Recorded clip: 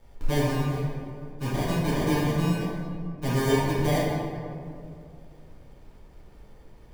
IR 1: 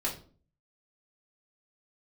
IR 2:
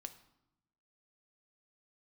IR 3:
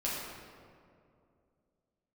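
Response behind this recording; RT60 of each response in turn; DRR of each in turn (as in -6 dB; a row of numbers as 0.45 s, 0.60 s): 3; 0.45 s, 0.85 s, 2.4 s; -6.0 dB, 8.5 dB, -7.5 dB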